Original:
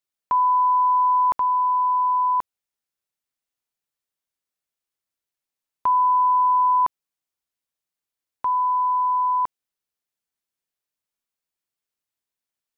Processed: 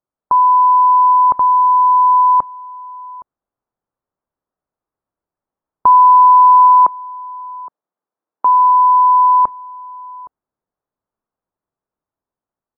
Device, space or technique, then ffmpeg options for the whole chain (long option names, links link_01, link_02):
action camera in a waterproof case: -filter_complex "[0:a]asettb=1/sr,asplit=3[link_01][link_02][link_03];[link_01]atrim=end=6.594[link_04];[link_02]atrim=start=6.59:end=8.71,asetpts=PTS-STARTPTS,afade=type=in:duration=0.004:curve=qsin,afade=type=out:start_time=2.116:duration=0.004:curve=qsin,highpass=240[link_05];[link_03]atrim=start=8.706[link_06];[link_04][link_05]acrossfade=duration=0.004:curve1=hsin:curve2=qsin[link_07];[link_07][link_06]acrossfade=duration=0.004:curve1=qsin:curve2=hsin,lowpass=frequency=1200:width=0.5412,lowpass=frequency=1200:width=1.3066,asplit=2[link_08][link_09];[link_09]adelay=816.3,volume=-21dB,highshelf=frequency=4000:gain=-18.4[link_10];[link_08][link_10]amix=inputs=2:normalize=0,dynaudnorm=framelen=550:gausssize=7:maxgain=3dB,volume=9dB" -ar 22050 -c:a aac -b:a 48k